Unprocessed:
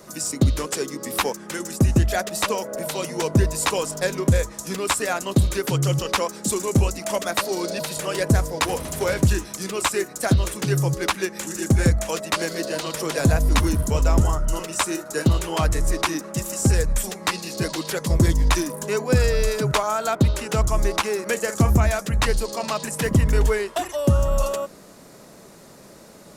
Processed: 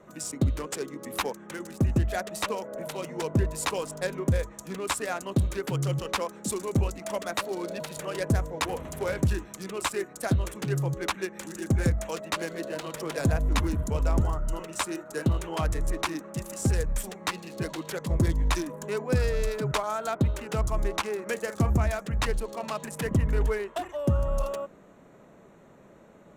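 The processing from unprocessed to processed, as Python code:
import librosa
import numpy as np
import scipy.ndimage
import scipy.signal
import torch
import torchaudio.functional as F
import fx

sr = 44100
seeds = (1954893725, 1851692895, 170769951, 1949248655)

y = fx.wiener(x, sr, points=9)
y = y * 10.0 ** (-6.5 / 20.0)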